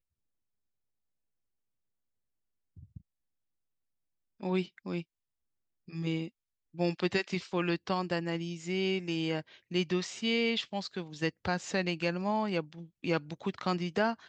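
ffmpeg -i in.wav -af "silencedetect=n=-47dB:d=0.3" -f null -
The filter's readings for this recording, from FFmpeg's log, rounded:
silence_start: 0.00
silence_end: 2.77 | silence_duration: 2.77
silence_start: 2.97
silence_end: 4.41 | silence_duration: 1.43
silence_start: 5.02
silence_end: 5.88 | silence_duration: 0.86
silence_start: 6.28
silence_end: 6.74 | silence_duration: 0.46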